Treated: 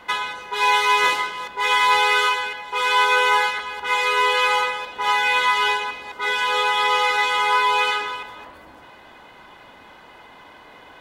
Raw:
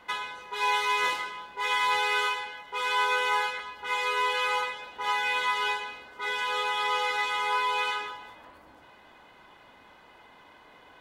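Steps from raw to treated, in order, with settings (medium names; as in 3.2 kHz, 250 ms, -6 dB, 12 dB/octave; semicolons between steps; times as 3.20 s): chunks repeated in reverse 211 ms, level -14 dB; trim +8.5 dB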